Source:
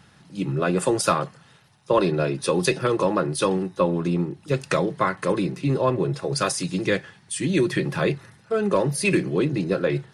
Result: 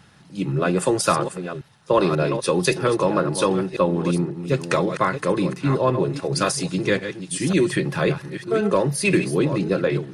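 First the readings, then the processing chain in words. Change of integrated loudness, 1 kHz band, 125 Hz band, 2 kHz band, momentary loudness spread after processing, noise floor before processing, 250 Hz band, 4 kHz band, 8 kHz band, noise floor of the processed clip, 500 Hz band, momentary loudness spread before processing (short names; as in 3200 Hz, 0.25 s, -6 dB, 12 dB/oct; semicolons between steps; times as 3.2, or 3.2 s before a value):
+2.0 dB, +2.0 dB, +2.0 dB, +2.0 dB, 6 LU, -55 dBFS, +2.0 dB, +2.0 dB, +2.0 dB, -49 dBFS, +2.0 dB, 6 LU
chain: reverse delay 0.538 s, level -9.5 dB; gain +1.5 dB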